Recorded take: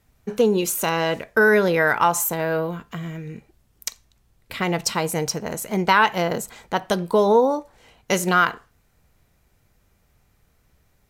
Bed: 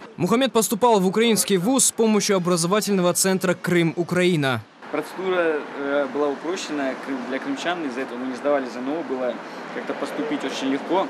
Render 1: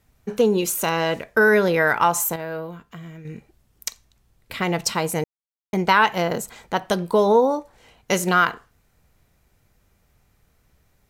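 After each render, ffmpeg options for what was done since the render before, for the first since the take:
-filter_complex "[0:a]asplit=5[a][b][c][d][e];[a]atrim=end=2.362[f];[b]atrim=start=2.358:end=3.252,asetpts=PTS-STARTPTS,volume=-7dB[g];[c]atrim=start=3.248:end=5.24,asetpts=PTS-STARTPTS,afade=t=out:st=1.988:d=0.004:c=hsin[h];[d]atrim=start=5.24:end=5.73,asetpts=PTS-STARTPTS,volume=0[i];[e]atrim=start=5.73,asetpts=PTS-STARTPTS,afade=t=in:d=0.004:c=hsin[j];[f][g]acrossfade=d=0.004:c1=hsin:c2=hsin[k];[h][i][j]concat=n=3:v=0:a=1[l];[k][l]acrossfade=d=0.004:c1=hsin:c2=hsin"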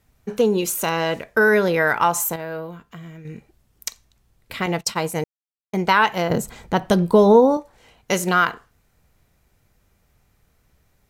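-filter_complex "[0:a]asettb=1/sr,asplit=3[a][b][c];[a]atrim=end=4.664[d];[b]atrim=start=4.66:end=5.76,asetpts=PTS-STARTPTS,afade=t=in:d=0.004:c=qsin,afade=t=out:st=1.096:d=0.004:c=qsin,agate=range=-33dB:threshold=-25dB:ratio=3:release=100:detection=peak[e];[c]atrim=start=5.756[f];[d][e]acrossfade=d=0.004:c1=hsin:c2=qsin[g];[g][f]acrossfade=d=0.004:c1=qsin:c2=hsin,asettb=1/sr,asplit=3[h][i][j];[h]atrim=end=6.304[k];[i]atrim=start=6.3:end=7.57,asetpts=PTS-STARTPTS,afade=t=in:d=0.004:c=qsin,afade=t=out:st=1.266:d=0.004:c=qsin,lowshelf=f=320:g=11.5[l];[j]atrim=start=7.566[m];[k][l]acrossfade=d=0.004:c1=hsin:c2=qsin[n];[n][m]acrossfade=d=0.004:c1=qsin:c2=hsin"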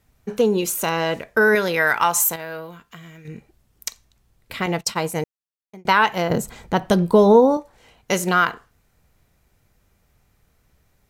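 -filter_complex "[0:a]asettb=1/sr,asplit=3[a][b][c];[a]atrim=end=1.554[d];[b]atrim=start=1.55:end=3.28,asetpts=PTS-STARTPTS,afade=t=in:d=0.004:c=qsin,afade=t=out:st=1.726:d=0.004:c=qsin,tiltshelf=f=1.1k:g=-5[e];[c]atrim=start=3.276[f];[d][e]acrossfade=d=0.004:c1=hsin:c2=qsin[g];[g][f]acrossfade=d=0.004:c1=qsin:c2=hsin,asplit=2[h][i];[h]atrim=end=5.85,asetpts=PTS-STARTPTS,afade=t=out:st=5.21:d=0.64[j];[i]atrim=start=5.85,asetpts=PTS-STARTPTS,afade=t=in:d=0.004:c=hsin[k];[j][k]concat=n=2:v=0:a=1"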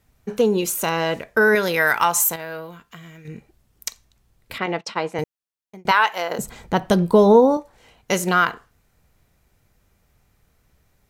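-filter_complex "[0:a]asettb=1/sr,asplit=3[a][b][c];[a]atrim=end=1.634[d];[b]atrim=start=1.63:end=2.05,asetpts=PTS-STARTPTS,afade=t=in:d=0.004:c=qsin,afade=t=out:st=0.416:d=0.004:c=qsin,highshelf=f=7.2k:g=7.5[e];[c]atrim=start=2.046[f];[d][e]acrossfade=d=0.004:c1=hsin:c2=qsin[g];[g][f]acrossfade=d=0.004:c1=qsin:c2=hsin,asettb=1/sr,asplit=3[h][i][j];[h]atrim=end=4.584[k];[i]atrim=start=4.58:end=5.19,asetpts=PTS-STARTPTS,afade=t=in:d=0.004:c=qsin,afade=t=out:st=0.606:d=0.004:c=qsin,highpass=240,lowpass=3.5k[l];[j]atrim=start=5.186[m];[k][l]acrossfade=d=0.004:c1=hsin:c2=qsin[n];[n][m]acrossfade=d=0.004:c1=qsin:c2=hsin,asettb=1/sr,asplit=3[o][p][q];[o]atrim=end=5.914[r];[p]atrim=start=5.91:end=6.39,asetpts=PTS-STARTPTS,afade=t=in:d=0.004:c=qsin,afade=t=out:st=0.476:d=0.004:c=qsin,highpass=580[s];[q]atrim=start=6.386[t];[r][s]acrossfade=d=0.004:c1=hsin:c2=qsin[u];[u][t]acrossfade=d=0.004:c1=qsin:c2=hsin"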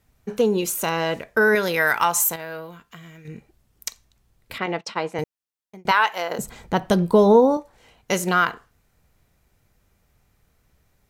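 -af "volume=-1.5dB"

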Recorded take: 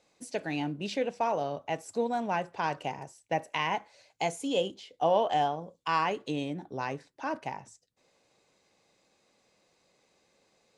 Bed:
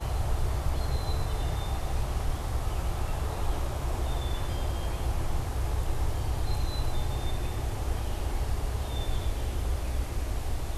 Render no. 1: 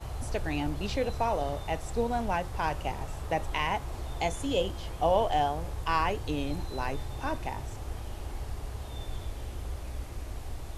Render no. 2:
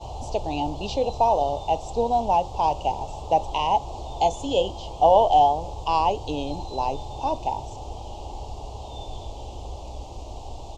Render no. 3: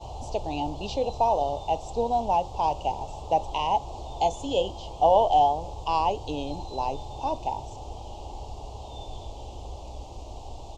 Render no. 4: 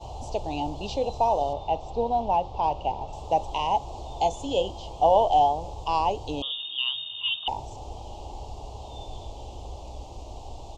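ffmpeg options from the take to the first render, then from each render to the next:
-filter_complex "[1:a]volume=-7dB[a];[0:a][a]amix=inputs=2:normalize=0"
-af "firequalizer=gain_entry='entry(160,0);entry(860,13);entry(1600,-27);entry(2800,5);entry(7200,4);entry(10000,-16)':delay=0.05:min_phase=1"
-af "volume=-3dB"
-filter_complex "[0:a]asettb=1/sr,asplit=3[a][b][c];[a]atrim=end=1.534[d];[b]atrim=start=1.53:end=3.13,asetpts=PTS-STARTPTS,afade=t=in:d=0.004:c=qsin,afade=t=out:st=1.596:d=0.004:c=qsin,lowpass=3.8k[e];[c]atrim=start=3.126[f];[d][e]acrossfade=d=0.004:c1=hsin:c2=qsin[g];[g][f]acrossfade=d=0.004:c1=qsin:c2=hsin,asettb=1/sr,asplit=3[h][i][j];[h]atrim=end=6.424[k];[i]atrim=start=6.42:end=7.48,asetpts=PTS-STARTPTS,afade=t=in:d=0.004:c=qsin,afade=t=out:st=1.056:d=0.004:c=qsin,lowpass=f=3.1k:t=q:w=0.5098,lowpass=f=3.1k:t=q:w=0.6013,lowpass=f=3.1k:t=q:w=0.9,lowpass=f=3.1k:t=q:w=2.563,afreqshift=-3700[l];[j]atrim=start=7.476[m];[k][l]acrossfade=d=0.004:c1=hsin:c2=qsin[n];[n][m]acrossfade=d=0.004:c1=qsin:c2=hsin"

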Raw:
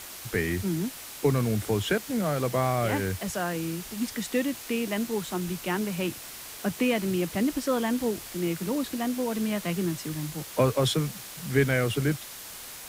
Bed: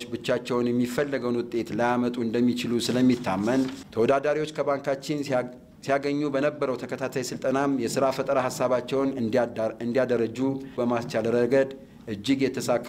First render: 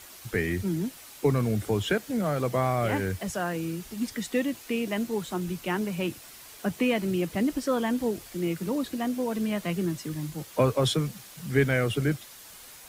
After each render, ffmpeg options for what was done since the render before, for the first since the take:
-af "afftdn=nr=7:nf=-42"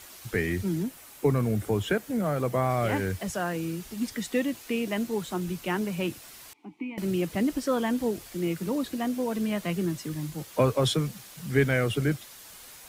-filter_complex "[0:a]asettb=1/sr,asplit=3[a][b][c];[a]atrim=end=0.834[d];[b]atrim=start=0.83:end=2.7,asetpts=PTS-STARTPTS,afade=t=in:d=0.004:c=qsin,afade=t=out:st=1.866:d=0.004:c=qsin,equalizer=f=4.4k:t=o:w=1.6:g=-5[e];[c]atrim=start=2.696[f];[d][e]acrossfade=d=0.004:c1=hsin:c2=qsin[g];[g][f]acrossfade=d=0.004:c1=qsin:c2=hsin,asettb=1/sr,asplit=3[h][i][j];[h]atrim=end=6.534[k];[i]atrim=start=6.53:end=6.98,asetpts=PTS-STARTPTS,afade=t=in:d=0.004:c=qsin,afade=t=out:st=0.446:d=0.004:c=qsin,asplit=3[l][m][n];[l]bandpass=f=300:t=q:w=8,volume=0dB[o];[m]bandpass=f=870:t=q:w=8,volume=-6dB[p];[n]bandpass=f=2.24k:t=q:w=8,volume=-9dB[q];[o][p][q]amix=inputs=3:normalize=0[r];[j]atrim=start=6.976[s];[k][r]acrossfade=d=0.004:c1=hsin:c2=qsin[t];[t][s]acrossfade=d=0.004:c1=qsin:c2=hsin"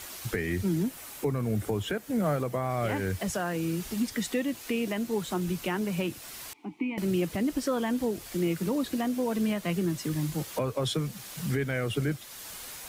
-filter_complex "[0:a]asplit=2[a][b];[b]acompressor=threshold=-34dB:ratio=6,volume=-1.5dB[c];[a][c]amix=inputs=2:normalize=0,alimiter=limit=-19dB:level=0:latency=1:release=395"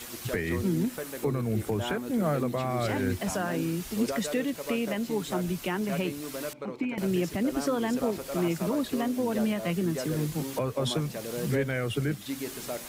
-filter_complex "[1:a]volume=-12dB[a];[0:a][a]amix=inputs=2:normalize=0"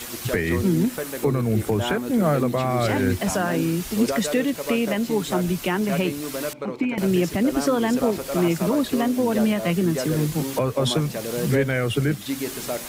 -af "volume=7dB"

